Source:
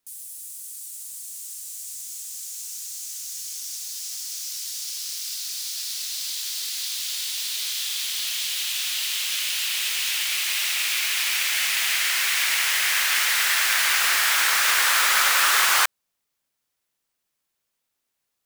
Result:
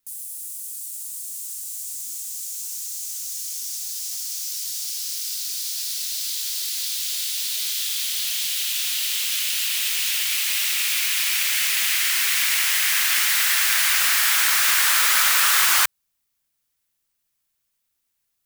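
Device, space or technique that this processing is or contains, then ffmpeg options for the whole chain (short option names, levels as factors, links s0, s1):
smiley-face EQ: -af "lowshelf=f=100:g=8,equalizer=f=510:t=o:w=2.1:g=-5.5,highshelf=f=9100:g=6.5"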